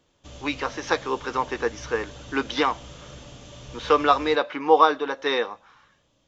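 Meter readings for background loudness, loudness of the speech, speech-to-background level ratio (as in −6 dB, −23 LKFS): −43.5 LKFS, −24.0 LKFS, 19.5 dB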